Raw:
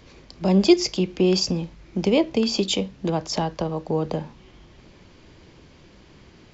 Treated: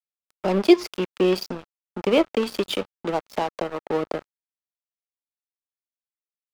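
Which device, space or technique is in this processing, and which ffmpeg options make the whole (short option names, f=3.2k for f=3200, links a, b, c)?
pocket radio on a weak battery: -af "highpass=320,lowpass=3.2k,aeval=exprs='sgn(val(0))*max(abs(val(0))-0.0224,0)':c=same,equalizer=f=1.3k:t=o:w=0.24:g=4.5,volume=4dB"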